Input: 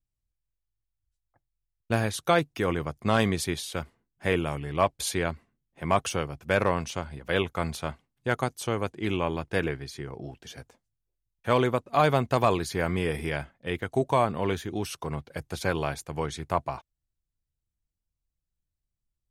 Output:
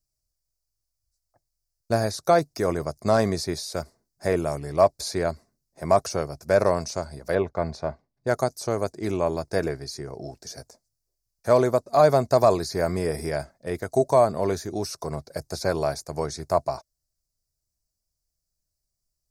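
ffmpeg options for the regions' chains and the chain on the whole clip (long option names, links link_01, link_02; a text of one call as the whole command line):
ffmpeg -i in.wav -filter_complex "[0:a]asettb=1/sr,asplit=3[link_01][link_02][link_03];[link_01]atrim=end=7.354[link_04];[link_02]atrim=start=7.35:end=8.27,asetpts=PTS-STARTPTS,afade=type=in:duration=0.004:curve=qsin,afade=type=out:start_time=0.916:duration=0.004:curve=qsin,lowpass=2300,bandreject=frequency=1300:width=10[link_05];[link_03]atrim=start=8.266[link_06];[link_04][link_05]acrossfade=duration=0.004:curve1=hsin:curve2=qsin[link_07];[link_07][link_06]acrossfade=duration=0.004:curve1=qsin:curve2=hsin,equalizer=frequency=400:width_type=o:width=0.33:gain=4,equalizer=frequency=630:width_type=o:width=0.33:gain=11,equalizer=frequency=3150:width_type=o:width=0.33:gain=-12,acrossover=split=3500[link_08][link_09];[link_09]acompressor=threshold=-48dB:ratio=4:attack=1:release=60[link_10];[link_08][link_10]amix=inputs=2:normalize=0,highshelf=frequency=3800:width_type=q:width=3:gain=9.5" out.wav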